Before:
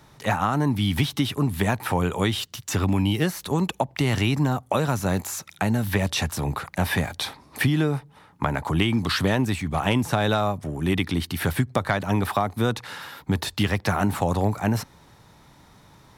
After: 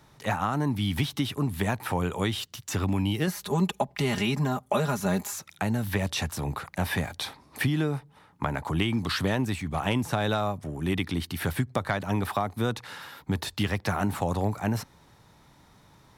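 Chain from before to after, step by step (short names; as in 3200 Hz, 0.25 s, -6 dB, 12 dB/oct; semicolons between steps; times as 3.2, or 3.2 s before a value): 3.27–5.33 comb 4.9 ms, depth 74%; gain -4.5 dB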